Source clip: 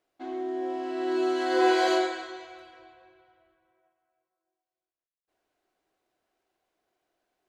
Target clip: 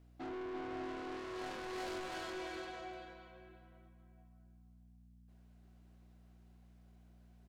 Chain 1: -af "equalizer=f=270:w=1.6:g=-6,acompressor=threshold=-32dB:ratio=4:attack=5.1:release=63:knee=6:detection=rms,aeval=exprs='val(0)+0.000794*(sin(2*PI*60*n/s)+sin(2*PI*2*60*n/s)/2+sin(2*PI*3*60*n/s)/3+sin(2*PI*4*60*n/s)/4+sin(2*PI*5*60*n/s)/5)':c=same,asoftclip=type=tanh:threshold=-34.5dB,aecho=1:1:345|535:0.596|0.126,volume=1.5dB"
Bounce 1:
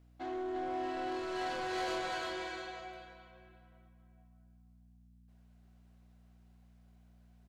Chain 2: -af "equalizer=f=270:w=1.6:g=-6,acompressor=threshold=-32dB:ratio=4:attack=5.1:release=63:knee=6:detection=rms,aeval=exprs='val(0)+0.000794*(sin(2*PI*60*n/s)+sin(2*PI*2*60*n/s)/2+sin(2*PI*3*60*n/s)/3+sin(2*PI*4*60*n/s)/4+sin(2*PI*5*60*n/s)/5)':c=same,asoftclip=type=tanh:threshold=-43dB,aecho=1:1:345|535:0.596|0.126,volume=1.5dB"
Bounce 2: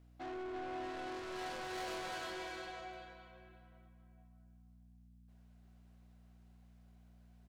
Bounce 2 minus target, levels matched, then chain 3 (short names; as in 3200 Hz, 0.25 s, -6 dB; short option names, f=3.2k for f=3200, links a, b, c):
250 Hz band -2.5 dB
-af "equalizer=f=270:w=1.6:g=4.5,acompressor=threshold=-32dB:ratio=4:attack=5.1:release=63:knee=6:detection=rms,aeval=exprs='val(0)+0.000794*(sin(2*PI*60*n/s)+sin(2*PI*2*60*n/s)/2+sin(2*PI*3*60*n/s)/3+sin(2*PI*4*60*n/s)/4+sin(2*PI*5*60*n/s)/5)':c=same,asoftclip=type=tanh:threshold=-43dB,aecho=1:1:345|535:0.596|0.126,volume=1.5dB"